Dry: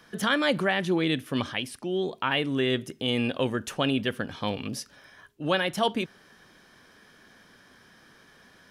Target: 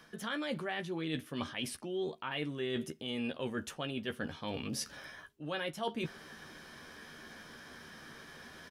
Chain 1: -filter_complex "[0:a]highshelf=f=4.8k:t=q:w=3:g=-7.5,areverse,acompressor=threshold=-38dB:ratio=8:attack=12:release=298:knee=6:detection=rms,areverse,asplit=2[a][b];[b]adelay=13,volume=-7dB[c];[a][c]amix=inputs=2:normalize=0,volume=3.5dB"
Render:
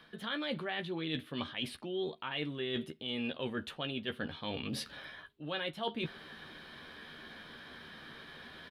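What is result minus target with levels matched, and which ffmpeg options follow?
8000 Hz band -7.5 dB
-filter_complex "[0:a]areverse,acompressor=threshold=-38dB:ratio=8:attack=12:release=298:knee=6:detection=rms,areverse,asplit=2[a][b];[b]adelay=13,volume=-7dB[c];[a][c]amix=inputs=2:normalize=0,volume=3.5dB"

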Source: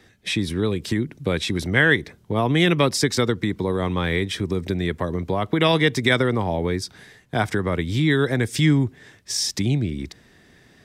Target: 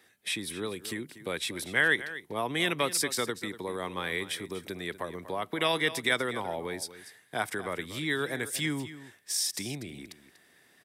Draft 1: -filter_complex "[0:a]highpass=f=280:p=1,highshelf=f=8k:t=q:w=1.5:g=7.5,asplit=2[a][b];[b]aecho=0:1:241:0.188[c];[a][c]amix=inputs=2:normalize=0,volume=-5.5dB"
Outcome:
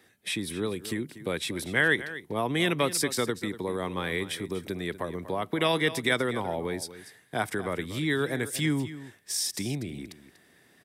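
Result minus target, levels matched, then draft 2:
250 Hz band +4.0 dB
-filter_complex "[0:a]highpass=f=700:p=1,highshelf=f=8k:t=q:w=1.5:g=7.5,asplit=2[a][b];[b]aecho=0:1:241:0.188[c];[a][c]amix=inputs=2:normalize=0,volume=-5.5dB"

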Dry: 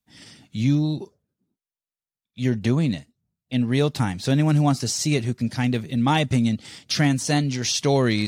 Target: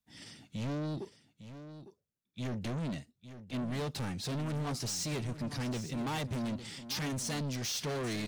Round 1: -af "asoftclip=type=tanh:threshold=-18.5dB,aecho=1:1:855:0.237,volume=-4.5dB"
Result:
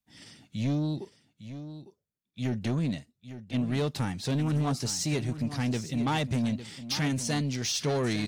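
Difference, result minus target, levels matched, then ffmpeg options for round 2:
soft clip: distortion -7 dB
-af "asoftclip=type=tanh:threshold=-29dB,aecho=1:1:855:0.237,volume=-4.5dB"

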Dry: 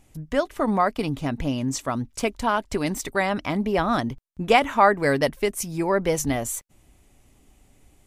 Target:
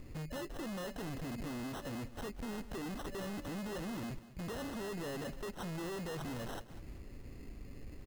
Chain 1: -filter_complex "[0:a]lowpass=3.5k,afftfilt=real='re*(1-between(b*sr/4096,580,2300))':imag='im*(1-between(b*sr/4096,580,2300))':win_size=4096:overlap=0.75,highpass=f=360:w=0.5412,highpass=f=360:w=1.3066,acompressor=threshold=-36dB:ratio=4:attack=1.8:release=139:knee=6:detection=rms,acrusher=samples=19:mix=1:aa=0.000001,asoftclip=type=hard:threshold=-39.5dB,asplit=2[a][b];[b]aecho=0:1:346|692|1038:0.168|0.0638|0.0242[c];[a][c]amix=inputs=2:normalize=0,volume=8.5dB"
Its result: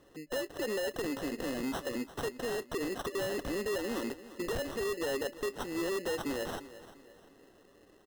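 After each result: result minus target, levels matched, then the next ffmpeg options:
echo 0.152 s late; hard clip: distortion -6 dB; 500 Hz band +3.0 dB
-filter_complex "[0:a]lowpass=3.5k,afftfilt=real='re*(1-between(b*sr/4096,580,2300))':imag='im*(1-between(b*sr/4096,580,2300))':win_size=4096:overlap=0.75,highpass=f=360:w=0.5412,highpass=f=360:w=1.3066,acompressor=threshold=-36dB:ratio=4:attack=1.8:release=139:knee=6:detection=rms,acrusher=samples=19:mix=1:aa=0.000001,asoftclip=type=hard:threshold=-39.5dB,asplit=2[a][b];[b]aecho=0:1:194|388|582:0.168|0.0638|0.0242[c];[a][c]amix=inputs=2:normalize=0,volume=8.5dB"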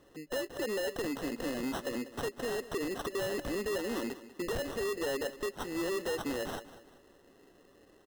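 hard clip: distortion -6 dB; 500 Hz band +3.0 dB
-filter_complex "[0:a]lowpass=3.5k,afftfilt=real='re*(1-between(b*sr/4096,580,2300))':imag='im*(1-between(b*sr/4096,580,2300))':win_size=4096:overlap=0.75,highpass=f=360:w=0.5412,highpass=f=360:w=1.3066,acompressor=threshold=-36dB:ratio=4:attack=1.8:release=139:knee=6:detection=rms,acrusher=samples=19:mix=1:aa=0.000001,asoftclip=type=hard:threshold=-48.5dB,asplit=2[a][b];[b]aecho=0:1:194|388|582:0.168|0.0638|0.0242[c];[a][c]amix=inputs=2:normalize=0,volume=8.5dB"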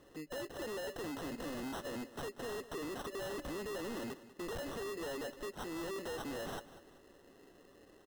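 500 Hz band +2.0 dB
-filter_complex "[0:a]lowpass=3.5k,afftfilt=real='re*(1-between(b*sr/4096,580,2300))':imag='im*(1-between(b*sr/4096,580,2300))':win_size=4096:overlap=0.75,acompressor=threshold=-36dB:ratio=4:attack=1.8:release=139:knee=6:detection=rms,acrusher=samples=19:mix=1:aa=0.000001,asoftclip=type=hard:threshold=-48.5dB,asplit=2[a][b];[b]aecho=0:1:194|388|582:0.168|0.0638|0.0242[c];[a][c]amix=inputs=2:normalize=0,volume=8.5dB"

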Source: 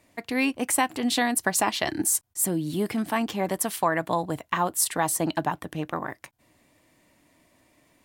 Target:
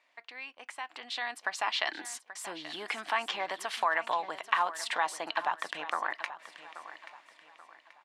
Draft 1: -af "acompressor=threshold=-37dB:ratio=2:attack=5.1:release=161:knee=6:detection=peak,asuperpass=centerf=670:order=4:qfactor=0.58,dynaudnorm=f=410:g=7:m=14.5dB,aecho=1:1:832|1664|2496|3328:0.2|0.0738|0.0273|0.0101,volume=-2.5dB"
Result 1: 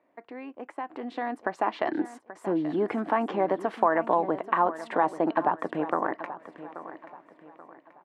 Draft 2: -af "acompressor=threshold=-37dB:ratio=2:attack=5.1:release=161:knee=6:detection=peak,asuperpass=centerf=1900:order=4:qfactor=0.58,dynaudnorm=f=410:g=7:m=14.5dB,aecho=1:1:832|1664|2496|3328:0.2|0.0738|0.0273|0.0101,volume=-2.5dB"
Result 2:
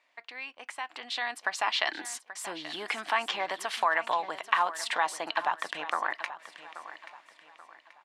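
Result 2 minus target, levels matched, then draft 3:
compressor: peak gain reduction -3 dB
-af "acompressor=threshold=-43dB:ratio=2:attack=5.1:release=161:knee=6:detection=peak,asuperpass=centerf=1900:order=4:qfactor=0.58,dynaudnorm=f=410:g=7:m=14.5dB,aecho=1:1:832|1664|2496|3328:0.2|0.0738|0.0273|0.0101,volume=-2.5dB"

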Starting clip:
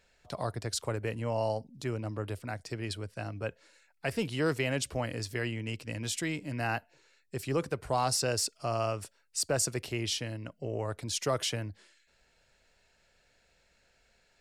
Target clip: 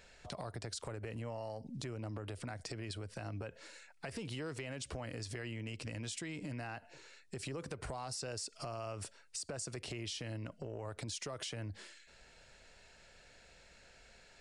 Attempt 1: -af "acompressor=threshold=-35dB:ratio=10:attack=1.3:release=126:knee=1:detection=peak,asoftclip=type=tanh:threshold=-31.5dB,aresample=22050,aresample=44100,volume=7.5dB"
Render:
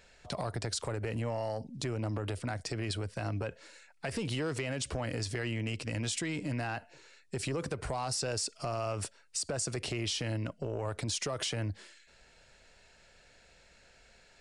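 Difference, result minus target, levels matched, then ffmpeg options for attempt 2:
compressor: peak gain reduction -9 dB
-af "acompressor=threshold=-45dB:ratio=10:attack=1.3:release=126:knee=1:detection=peak,asoftclip=type=tanh:threshold=-31.5dB,aresample=22050,aresample=44100,volume=7.5dB"

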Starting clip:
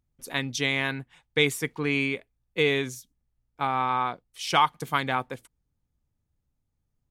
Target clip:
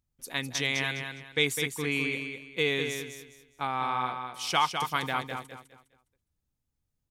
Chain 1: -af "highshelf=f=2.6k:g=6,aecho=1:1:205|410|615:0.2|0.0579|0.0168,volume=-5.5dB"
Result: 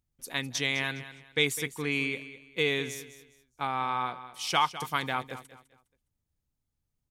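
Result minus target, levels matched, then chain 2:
echo-to-direct -7.5 dB
-af "highshelf=f=2.6k:g=6,aecho=1:1:205|410|615|820:0.473|0.137|0.0398|0.0115,volume=-5.5dB"

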